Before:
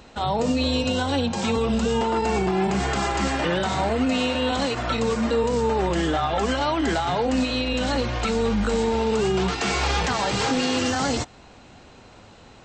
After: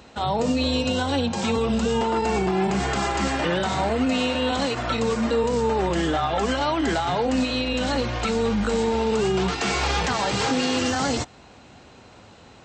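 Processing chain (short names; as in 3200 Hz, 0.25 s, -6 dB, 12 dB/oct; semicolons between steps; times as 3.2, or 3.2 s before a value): HPF 55 Hz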